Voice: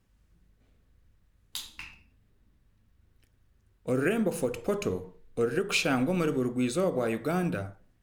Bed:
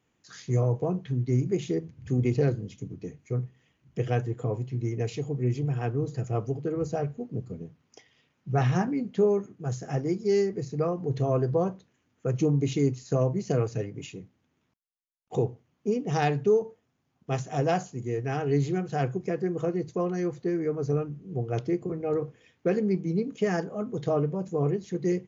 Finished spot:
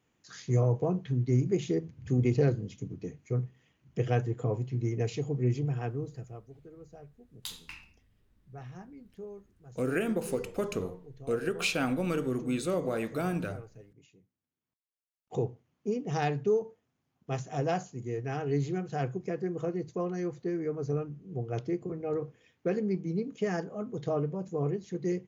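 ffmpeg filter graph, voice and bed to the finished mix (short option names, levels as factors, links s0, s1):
-filter_complex "[0:a]adelay=5900,volume=0.708[s0];[1:a]volume=5.96,afade=t=out:st=5.5:d=0.92:silence=0.1,afade=t=in:st=14.64:d=0.67:silence=0.149624[s1];[s0][s1]amix=inputs=2:normalize=0"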